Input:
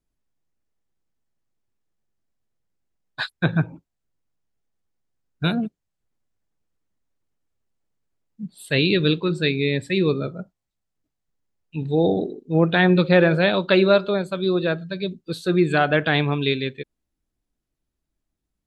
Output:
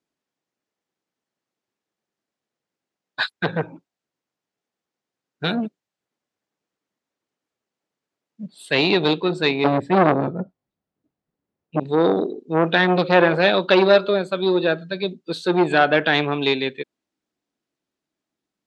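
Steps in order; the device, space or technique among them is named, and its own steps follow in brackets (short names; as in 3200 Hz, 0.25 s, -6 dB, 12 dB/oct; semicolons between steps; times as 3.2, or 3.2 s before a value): 9.64–11.8 tilt -4 dB/oct; public-address speaker with an overloaded transformer (core saturation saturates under 840 Hz; BPF 250–6600 Hz); gain +4.5 dB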